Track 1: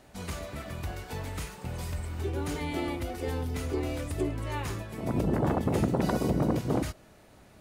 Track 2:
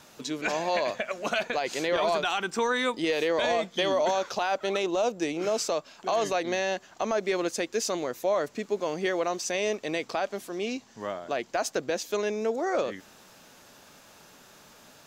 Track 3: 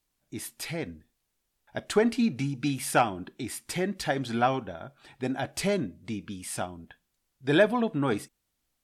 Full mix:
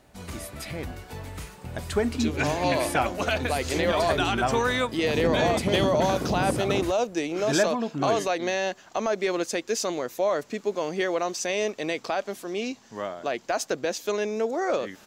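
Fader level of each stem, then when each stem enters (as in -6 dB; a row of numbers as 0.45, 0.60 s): -1.5, +1.5, -2.0 dB; 0.00, 1.95, 0.00 s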